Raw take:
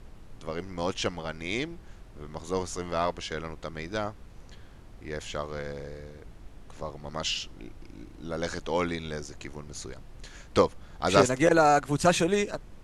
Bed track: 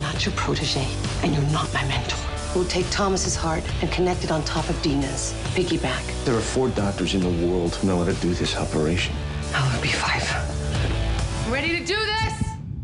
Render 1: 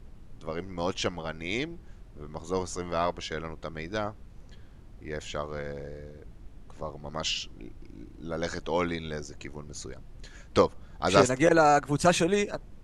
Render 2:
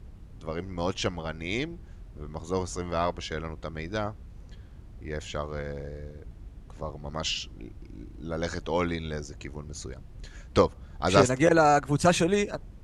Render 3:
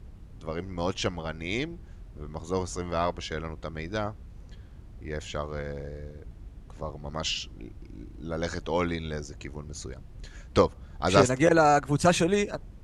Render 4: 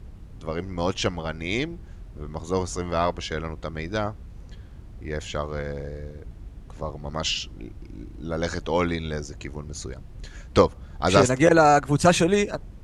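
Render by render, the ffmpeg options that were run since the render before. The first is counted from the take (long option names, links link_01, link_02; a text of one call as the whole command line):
ffmpeg -i in.wav -af "afftdn=noise_reduction=6:noise_floor=-49" out.wav
ffmpeg -i in.wav -af "highpass=45,lowshelf=frequency=91:gain=11" out.wav
ffmpeg -i in.wav -af anull out.wav
ffmpeg -i in.wav -af "volume=4dB,alimiter=limit=-3dB:level=0:latency=1" out.wav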